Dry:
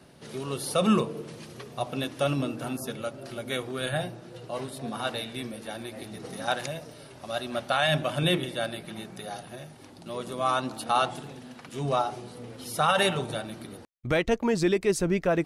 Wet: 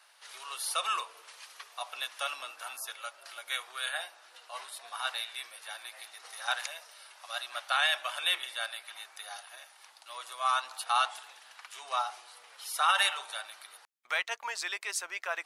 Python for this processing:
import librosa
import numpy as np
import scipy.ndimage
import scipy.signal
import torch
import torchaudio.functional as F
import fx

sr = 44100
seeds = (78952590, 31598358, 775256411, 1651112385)

y = scipy.signal.sosfilt(scipy.signal.butter(4, 940.0, 'highpass', fs=sr, output='sos'), x)